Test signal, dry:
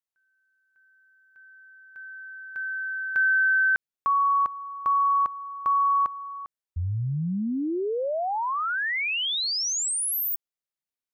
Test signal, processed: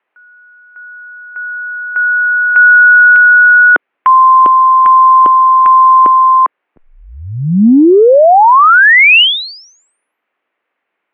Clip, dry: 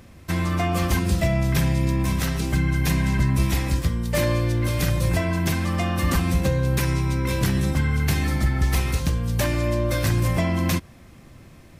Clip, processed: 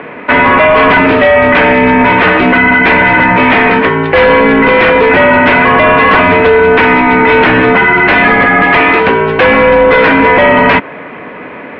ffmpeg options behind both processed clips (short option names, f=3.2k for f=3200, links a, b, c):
-af "highpass=f=370:t=q:w=0.5412,highpass=f=370:t=q:w=1.307,lowpass=f=2.6k:t=q:w=0.5176,lowpass=f=2.6k:t=q:w=0.7071,lowpass=f=2.6k:t=q:w=1.932,afreqshift=-78,apsyclip=32dB,volume=-2dB"